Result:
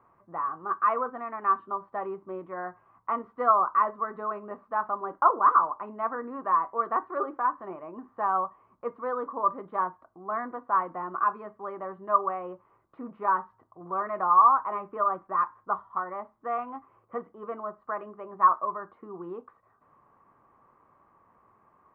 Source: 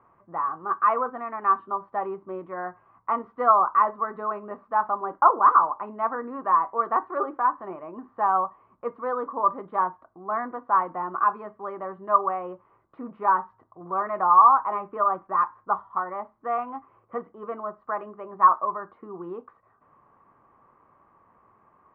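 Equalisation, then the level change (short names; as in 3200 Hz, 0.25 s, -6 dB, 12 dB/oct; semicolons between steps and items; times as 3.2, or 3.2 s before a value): dynamic EQ 840 Hz, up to -5 dB, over -37 dBFS, Q 4.4; -2.5 dB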